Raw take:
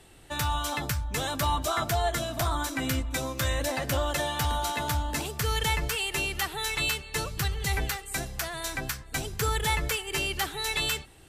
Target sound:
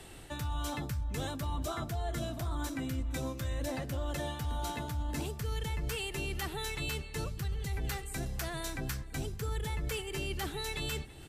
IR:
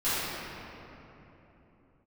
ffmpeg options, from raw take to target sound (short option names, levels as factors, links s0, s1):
-filter_complex "[0:a]acrossover=split=430[s0][s1];[s1]acompressor=threshold=0.00158:ratio=1.5[s2];[s0][s2]amix=inputs=2:normalize=0,asplit=2[s3][s4];[s4]adelay=332.4,volume=0.0708,highshelf=f=4000:g=-7.48[s5];[s3][s5]amix=inputs=2:normalize=0,areverse,acompressor=threshold=0.0141:ratio=6,areverse,volume=1.68"